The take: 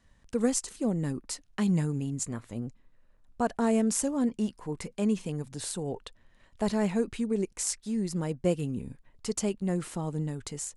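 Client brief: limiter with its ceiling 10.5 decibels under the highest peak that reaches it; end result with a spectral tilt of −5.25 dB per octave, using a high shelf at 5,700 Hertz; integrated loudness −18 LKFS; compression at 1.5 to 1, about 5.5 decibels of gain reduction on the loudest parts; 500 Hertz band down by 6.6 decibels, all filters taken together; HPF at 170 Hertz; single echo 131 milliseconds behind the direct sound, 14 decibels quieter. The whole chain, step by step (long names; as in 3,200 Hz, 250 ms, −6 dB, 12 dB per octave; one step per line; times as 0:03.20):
high-pass filter 170 Hz
parametric band 500 Hz −8 dB
high-shelf EQ 5,700 Hz −9 dB
downward compressor 1.5 to 1, threshold −41 dBFS
brickwall limiter −32.5 dBFS
single-tap delay 131 ms −14 dB
level +24 dB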